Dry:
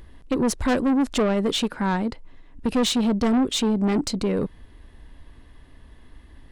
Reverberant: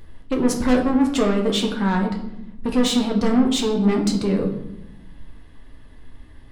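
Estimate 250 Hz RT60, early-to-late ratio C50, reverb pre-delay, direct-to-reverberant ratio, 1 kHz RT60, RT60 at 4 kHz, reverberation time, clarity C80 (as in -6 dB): 1.5 s, 8.0 dB, 8 ms, 0.5 dB, 0.80 s, 0.65 s, 0.90 s, 10.5 dB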